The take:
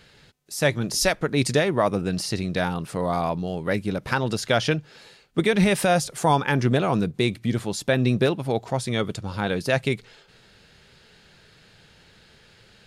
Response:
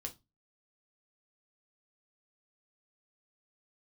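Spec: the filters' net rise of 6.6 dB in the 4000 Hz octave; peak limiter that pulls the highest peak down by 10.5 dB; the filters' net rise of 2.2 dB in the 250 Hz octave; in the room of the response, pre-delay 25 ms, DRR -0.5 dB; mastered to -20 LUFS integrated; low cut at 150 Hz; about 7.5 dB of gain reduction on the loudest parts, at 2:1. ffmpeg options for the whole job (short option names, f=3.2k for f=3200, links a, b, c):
-filter_complex "[0:a]highpass=150,equalizer=f=250:t=o:g=4,equalizer=f=4k:t=o:g=8,acompressor=threshold=-28dB:ratio=2,alimiter=limit=-21dB:level=0:latency=1,asplit=2[a][b];[1:a]atrim=start_sample=2205,adelay=25[c];[b][c]afir=irnorm=-1:irlink=0,volume=3dB[d];[a][d]amix=inputs=2:normalize=0,volume=8.5dB"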